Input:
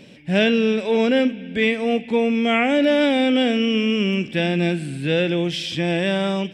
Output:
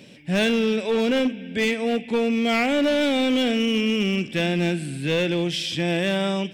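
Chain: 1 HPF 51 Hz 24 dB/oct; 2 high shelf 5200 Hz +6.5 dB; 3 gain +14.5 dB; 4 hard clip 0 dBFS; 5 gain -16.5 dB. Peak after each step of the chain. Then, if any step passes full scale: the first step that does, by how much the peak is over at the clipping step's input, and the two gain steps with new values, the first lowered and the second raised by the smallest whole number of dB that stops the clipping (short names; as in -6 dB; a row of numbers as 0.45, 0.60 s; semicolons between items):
-7.0, -6.0, +8.5, 0.0, -16.5 dBFS; step 3, 8.5 dB; step 3 +5.5 dB, step 5 -7.5 dB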